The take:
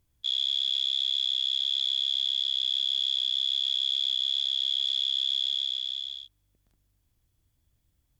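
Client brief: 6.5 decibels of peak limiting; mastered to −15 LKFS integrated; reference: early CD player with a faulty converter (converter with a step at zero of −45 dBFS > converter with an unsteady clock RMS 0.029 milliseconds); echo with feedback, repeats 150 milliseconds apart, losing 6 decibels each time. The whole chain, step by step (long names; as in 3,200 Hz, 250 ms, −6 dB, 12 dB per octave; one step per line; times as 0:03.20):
brickwall limiter −25.5 dBFS
repeating echo 150 ms, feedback 50%, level −6 dB
converter with a step at zero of −45 dBFS
converter with an unsteady clock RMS 0.029 ms
level +14 dB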